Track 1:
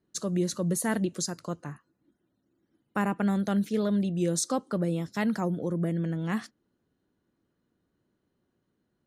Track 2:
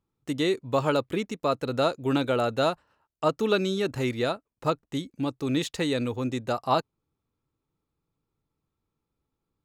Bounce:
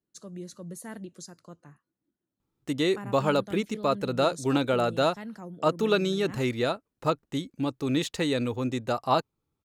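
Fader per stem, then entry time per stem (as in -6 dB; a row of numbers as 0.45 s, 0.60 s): -12.5 dB, 0.0 dB; 0.00 s, 2.40 s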